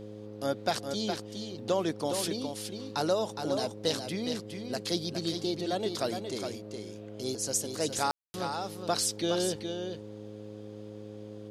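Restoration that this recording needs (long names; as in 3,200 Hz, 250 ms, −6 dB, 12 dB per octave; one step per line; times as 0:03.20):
clipped peaks rebuilt −14.5 dBFS
hum removal 105.4 Hz, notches 5
ambience match 0:08.11–0:08.34
echo removal 414 ms −6.5 dB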